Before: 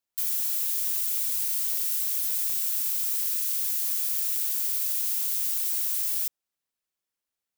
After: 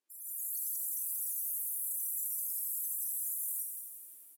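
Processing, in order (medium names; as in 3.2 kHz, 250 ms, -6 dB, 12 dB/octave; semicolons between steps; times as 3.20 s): spectral gate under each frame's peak -15 dB strong; elliptic band-pass 170–7000 Hz, stop band 40 dB; tone controls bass +14 dB, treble -3 dB; peak limiter -43 dBFS, peak gain reduction 7 dB; level rider gain up to 13.5 dB; delay 320 ms -8.5 dB; speed mistake 45 rpm record played at 78 rpm; reverberation, pre-delay 18 ms, DRR 4 dB; bit-crushed delay 87 ms, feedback 80%, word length 14-bit, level -10 dB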